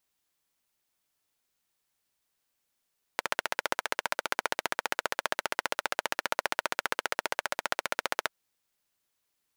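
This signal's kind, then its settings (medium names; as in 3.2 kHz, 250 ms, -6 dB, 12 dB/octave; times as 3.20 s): single-cylinder engine model, steady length 5.13 s, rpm 1800, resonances 610/900/1400 Hz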